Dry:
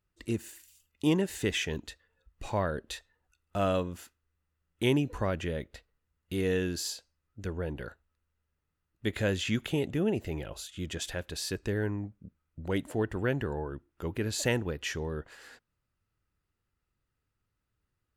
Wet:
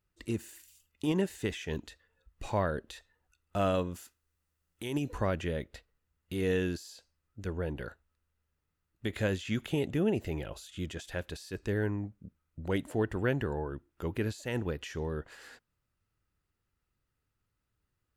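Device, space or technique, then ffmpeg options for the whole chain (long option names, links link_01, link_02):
de-esser from a sidechain: -filter_complex "[0:a]asettb=1/sr,asplit=3[link_01][link_02][link_03];[link_01]atrim=end=3.944[link_04];[link_02]atrim=start=3.94:end=5.13,asetpts=PTS-STARTPTS,afade=type=in:duration=0.004:curve=qsin,afade=type=out:start_time=1.186:duration=0.004:curve=qsin,bass=frequency=250:gain=-2,treble=frequency=4000:gain=7[link_05];[link_03]atrim=start=5.126[link_06];[link_04][link_05]acrossfade=duration=0.004:curve1=hsin:curve2=qsin[link_07];[link_07][link_06]acrossfade=duration=0.004:curve1=qsin:curve2=hsin,asplit=2[link_08][link_09];[link_09]highpass=frequency=4200:width=0.5412,highpass=frequency=4200:width=1.3066,apad=whole_len=801231[link_10];[link_08][link_10]sidechaincompress=threshold=-45dB:ratio=12:attack=1.5:release=91"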